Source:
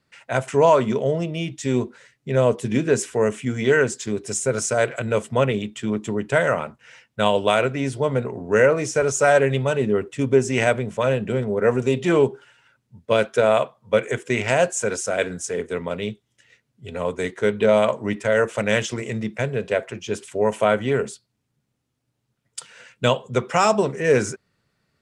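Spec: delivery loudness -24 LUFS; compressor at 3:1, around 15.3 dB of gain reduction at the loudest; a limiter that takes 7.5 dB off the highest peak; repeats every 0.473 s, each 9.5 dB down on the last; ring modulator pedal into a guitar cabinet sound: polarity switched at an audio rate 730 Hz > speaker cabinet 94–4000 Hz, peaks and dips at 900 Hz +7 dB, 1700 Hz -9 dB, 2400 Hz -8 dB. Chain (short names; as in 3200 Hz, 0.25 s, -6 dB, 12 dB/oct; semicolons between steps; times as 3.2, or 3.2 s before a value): compressor 3:1, threshold -33 dBFS; limiter -23 dBFS; feedback echo 0.473 s, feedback 33%, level -9.5 dB; polarity switched at an audio rate 730 Hz; speaker cabinet 94–4000 Hz, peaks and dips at 900 Hz +7 dB, 1700 Hz -9 dB, 2400 Hz -8 dB; gain +10.5 dB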